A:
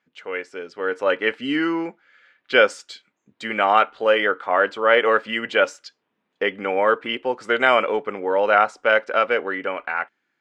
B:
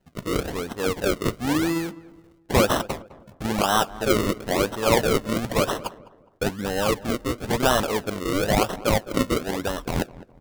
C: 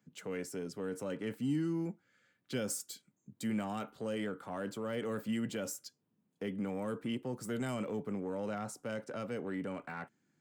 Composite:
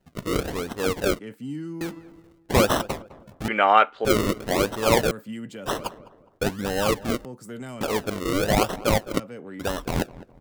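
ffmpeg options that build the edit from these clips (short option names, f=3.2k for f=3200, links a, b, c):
-filter_complex "[2:a]asplit=4[a][b][c][d];[1:a]asplit=6[e][f][g][h][i][j];[e]atrim=end=1.192[k];[a]atrim=start=1.188:end=1.812[l];[f]atrim=start=1.808:end=3.482[m];[0:a]atrim=start=3.478:end=4.052[n];[g]atrim=start=4.048:end=5.112[o];[b]atrim=start=5.108:end=5.662[p];[h]atrim=start=5.658:end=7.252[q];[c]atrim=start=7.248:end=7.812[r];[i]atrim=start=7.808:end=9.2[s];[d]atrim=start=9.18:end=9.61[t];[j]atrim=start=9.59[u];[k][l]acrossfade=d=0.004:c1=hsin:c2=hsin[v];[v][m]acrossfade=d=0.004:c1=hsin:c2=hsin[w];[w][n]acrossfade=d=0.004:c1=hsin:c2=hsin[x];[x][o]acrossfade=d=0.004:c1=hsin:c2=hsin[y];[y][p]acrossfade=d=0.004:c1=hsin:c2=hsin[z];[z][q]acrossfade=d=0.004:c1=hsin:c2=hsin[aa];[aa][r]acrossfade=d=0.004:c1=hsin:c2=hsin[ab];[ab][s]acrossfade=d=0.004:c1=hsin:c2=hsin[ac];[ac][t]acrossfade=d=0.02:c1=tri:c2=tri[ad];[ad][u]acrossfade=d=0.02:c1=tri:c2=tri"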